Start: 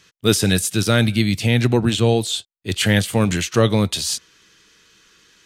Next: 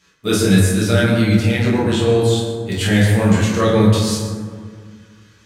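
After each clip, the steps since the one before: reverberation RT60 1.9 s, pre-delay 8 ms, DRR -10.5 dB; trim -8.5 dB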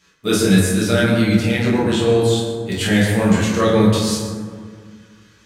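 peaking EQ 100 Hz -8 dB 0.24 oct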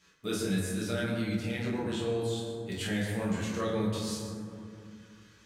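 compression 1.5:1, threshold -38 dBFS, peak gain reduction 10.5 dB; trim -7 dB

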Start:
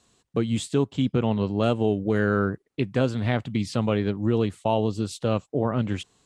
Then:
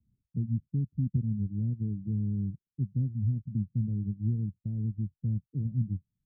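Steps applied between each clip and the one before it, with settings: reverb removal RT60 0.53 s; inverse Chebyshev low-pass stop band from 1.1 kHz, stop band 80 dB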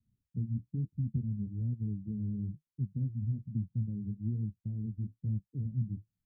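flange 1.1 Hz, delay 7.2 ms, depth 9.4 ms, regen -45%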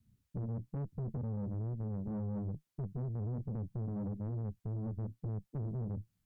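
peak limiter -34 dBFS, peak gain reduction 11.5 dB; valve stage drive 45 dB, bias 0.55; trim +10 dB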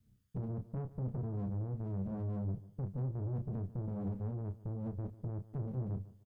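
comb filter that takes the minimum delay 0.61 ms; doubling 31 ms -8.5 dB; feedback delay 147 ms, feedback 32%, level -18 dB

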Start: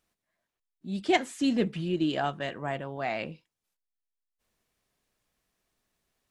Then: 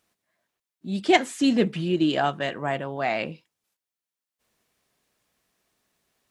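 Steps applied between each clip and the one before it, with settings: high-pass 120 Hz 6 dB/octave; trim +6 dB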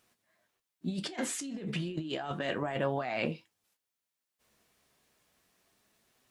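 compressor with a negative ratio -31 dBFS, ratio -1; flange 0.32 Hz, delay 7.8 ms, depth 7.1 ms, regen +62%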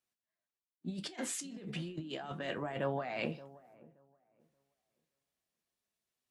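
feedback echo behind a low-pass 576 ms, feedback 34%, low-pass 1.1 kHz, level -15 dB; three bands expanded up and down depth 40%; trim -5.5 dB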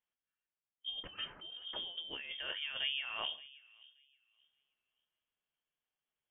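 frequency inversion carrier 3.4 kHz; trim -2.5 dB

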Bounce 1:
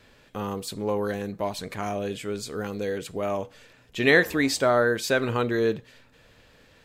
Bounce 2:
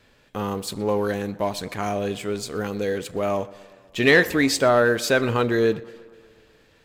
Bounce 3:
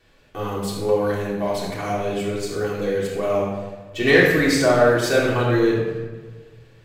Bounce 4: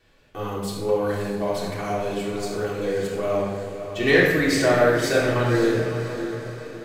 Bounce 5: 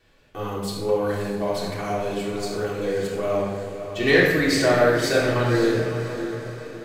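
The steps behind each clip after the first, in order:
waveshaping leveller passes 1; tape echo 122 ms, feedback 70%, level -20 dB, low-pass 3.6 kHz
reverberation RT60 1.2 s, pre-delay 3 ms, DRR -6 dB; trim -5.5 dB
echo that smears into a reverb 561 ms, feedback 47%, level -9.5 dB; trim -2.5 dB
dynamic bell 4.4 kHz, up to +4 dB, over -47 dBFS, Q 4.4

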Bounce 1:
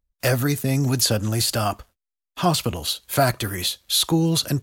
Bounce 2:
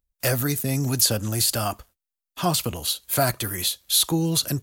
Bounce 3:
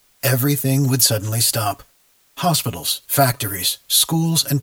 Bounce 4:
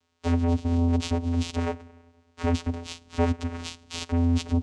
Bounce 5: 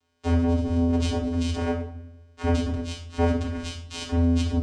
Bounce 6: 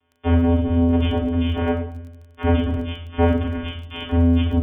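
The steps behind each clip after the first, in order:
treble shelf 7.4 kHz +10 dB; trim -3.5 dB
comb 7.2 ms, depth 90%; word length cut 10-bit, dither triangular; trim +2 dB
one-sided clip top -19 dBFS; spring tank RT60 1.6 s, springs 49/54 ms, chirp 60 ms, DRR 18 dB; vocoder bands 4, square 84.9 Hz; trim -3.5 dB
simulated room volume 780 m³, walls furnished, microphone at 3.2 m; trim -3 dB
brick-wall FIR low-pass 3.5 kHz; crackle 24 per s -43 dBFS; trim +5 dB

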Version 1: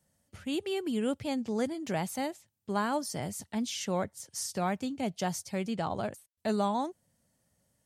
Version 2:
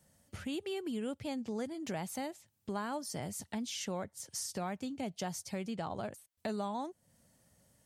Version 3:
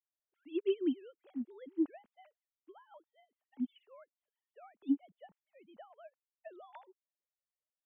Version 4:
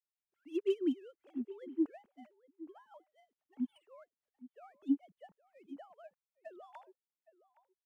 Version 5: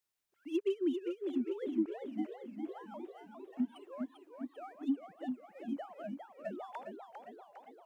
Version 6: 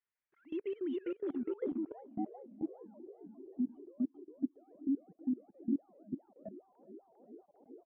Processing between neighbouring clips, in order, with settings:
compression 2.5:1, threshold -47 dBFS, peak gain reduction 14.5 dB; trim +5.5 dB
formants replaced by sine waves; upward expansion 2.5:1, over -50 dBFS; trim +3.5 dB
median filter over 9 samples; echo from a far wall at 140 m, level -17 dB
compression 6:1, threshold -38 dBFS, peak gain reduction 12.5 dB; modulated delay 400 ms, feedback 61%, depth 190 cents, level -6 dB; trim +8 dB
coarse spectral quantiser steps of 15 dB; level held to a coarse grid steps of 20 dB; low-pass sweep 1.9 kHz -> 340 Hz, 1.00–3.31 s; trim +4.5 dB

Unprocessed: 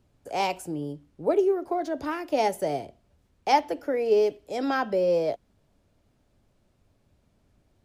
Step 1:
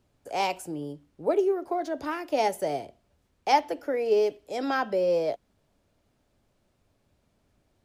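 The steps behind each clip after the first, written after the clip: bass shelf 270 Hz -5.5 dB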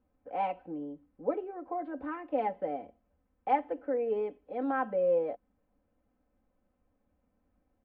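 Gaussian low-pass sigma 4.2 samples; comb 3.9 ms, depth 88%; trim -7 dB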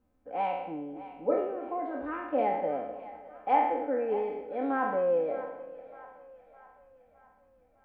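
spectral sustain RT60 0.87 s; two-band feedback delay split 630 Hz, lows 247 ms, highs 611 ms, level -15 dB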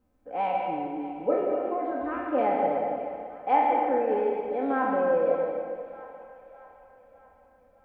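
plate-style reverb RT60 1.6 s, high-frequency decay 0.7×, pre-delay 110 ms, DRR 2.5 dB; trim +2 dB

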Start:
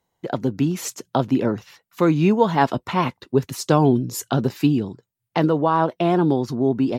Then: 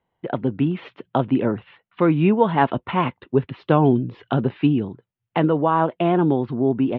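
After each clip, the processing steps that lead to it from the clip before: steep low-pass 3.3 kHz 48 dB/octave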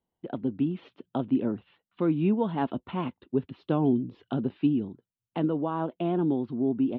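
graphic EQ 125/250/500/1000/2000 Hz -6/+4/-4/-5/-10 dB; trim -6.5 dB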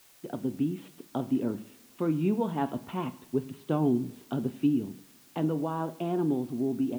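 in parallel at -4 dB: word length cut 8-bit, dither triangular; on the sum: two-slope reverb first 0.56 s, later 1.8 s, from -17 dB, DRR 11 dB; trim -6.5 dB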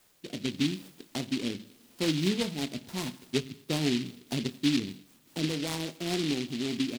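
rotary cabinet horn 0.85 Hz, later 5 Hz, at 3.32 s; doubling 21 ms -13.5 dB; delay time shaken by noise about 3.2 kHz, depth 0.2 ms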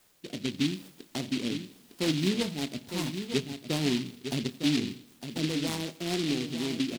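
delay 907 ms -8.5 dB

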